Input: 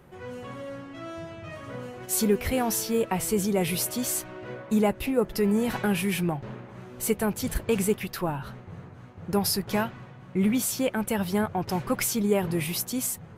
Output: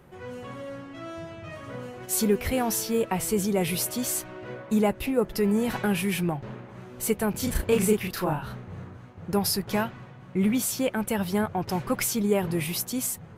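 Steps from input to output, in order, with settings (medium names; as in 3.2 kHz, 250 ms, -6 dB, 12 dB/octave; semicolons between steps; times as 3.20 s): 7.31–8.97 s: doubling 33 ms -2 dB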